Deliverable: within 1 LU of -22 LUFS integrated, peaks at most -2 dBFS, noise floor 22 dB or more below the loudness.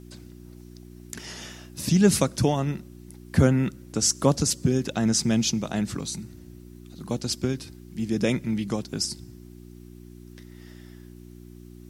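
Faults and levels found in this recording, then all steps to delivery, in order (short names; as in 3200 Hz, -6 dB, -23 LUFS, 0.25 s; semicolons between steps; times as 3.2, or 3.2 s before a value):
hum 60 Hz; harmonics up to 360 Hz; hum level -45 dBFS; loudness -25.0 LUFS; peak -5.5 dBFS; loudness target -22.0 LUFS
-> de-hum 60 Hz, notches 6; gain +3 dB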